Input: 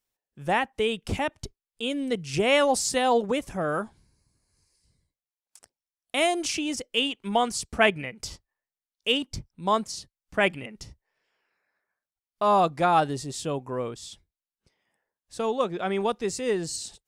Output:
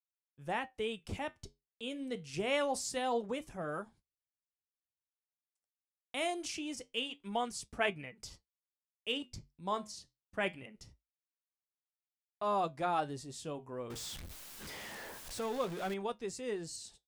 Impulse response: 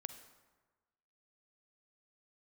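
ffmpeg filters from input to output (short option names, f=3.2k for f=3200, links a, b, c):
-filter_complex "[0:a]asettb=1/sr,asplit=3[a][b][c];[a]atrim=end=13.904[d];[b]atrim=start=13.9:end=15.94,asetpts=PTS-STARTPTS,afade=t=in:d=0.004:c=qsin,afade=t=out:st=2.036:d=0.004:c=qsin,aeval=exprs='val(0)+0.5*0.0398*sgn(val(0))':c=same[e];[c]atrim=start=15.936[f];[d][e]acrossfade=d=0.004:c1=hsin:c2=qsin[g];[g][f]acrossfade=d=0.004:c1=qsin:c2=hsin,agate=range=-31dB:threshold=-48dB:ratio=16:detection=peak,flanger=delay=6.4:depth=5.7:regen=-71:speed=0.25:shape=triangular,volume=-7.5dB"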